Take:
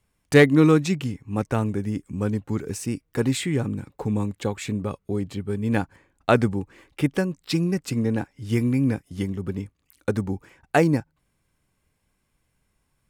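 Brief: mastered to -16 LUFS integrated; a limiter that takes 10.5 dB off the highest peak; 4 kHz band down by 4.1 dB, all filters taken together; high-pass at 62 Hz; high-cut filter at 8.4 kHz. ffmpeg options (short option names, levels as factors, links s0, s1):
-af "highpass=62,lowpass=8400,equalizer=f=4000:t=o:g=-5,volume=3.55,alimiter=limit=0.75:level=0:latency=1"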